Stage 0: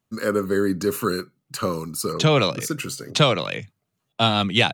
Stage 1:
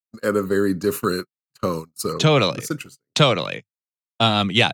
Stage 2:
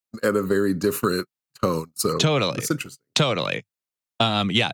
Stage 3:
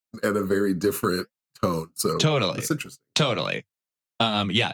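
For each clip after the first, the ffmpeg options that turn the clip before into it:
ffmpeg -i in.wav -af "agate=range=-47dB:threshold=-27dB:ratio=16:detection=peak,volume=1.5dB" out.wav
ffmpeg -i in.wav -af "acompressor=threshold=-21dB:ratio=6,volume=4dB" out.wav
ffmpeg -i in.wav -af "flanger=delay=4.6:depth=6.4:regen=-54:speed=1.4:shape=sinusoidal,volume=2.5dB" out.wav

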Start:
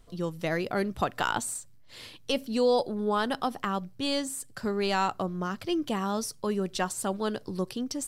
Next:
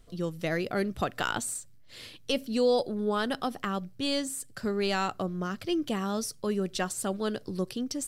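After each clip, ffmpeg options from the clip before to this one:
ffmpeg -i in.wav -af "equalizer=frequency=930:width=2.8:gain=-7" out.wav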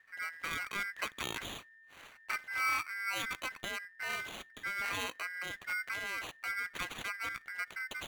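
ffmpeg -i in.wav -af "acrusher=samples=13:mix=1:aa=0.000001,aeval=exprs='val(0)*sin(2*PI*1800*n/s)':channel_layout=same,volume=-5.5dB" out.wav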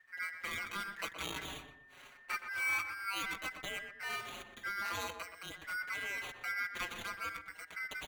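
ffmpeg -i in.wav -filter_complex "[0:a]asplit=2[link_01][link_02];[link_02]adelay=122,lowpass=frequency=1700:poles=1,volume=-7dB,asplit=2[link_03][link_04];[link_04]adelay=122,lowpass=frequency=1700:poles=1,volume=0.37,asplit=2[link_05][link_06];[link_06]adelay=122,lowpass=frequency=1700:poles=1,volume=0.37,asplit=2[link_07][link_08];[link_08]adelay=122,lowpass=frequency=1700:poles=1,volume=0.37[link_09];[link_01][link_03][link_05][link_07][link_09]amix=inputs=5:normalize=0,asplit=2[link_10][link_11];[link_11]adelay=5.1,afreqshift=-0.47[link_12];[link_10][link_12]amix=inputs=2:normalize=1,volume=1dB" out.wav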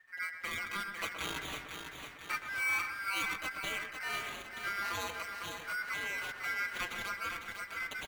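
ffmpeg -i in.wav -af "aecho=1:1:501|1002|1503|2004|2505|3006|3507:0.447|0.241|0.13|0.0703|0.038|0.0205|0.0111,volume=1.5dB" out.wav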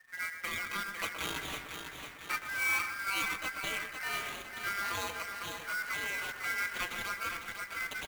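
ffmpeg -i in.wav -af "acrusher=bits=2:mode=log:mix=0:aa=0.000001,volume=1dB" out.wav

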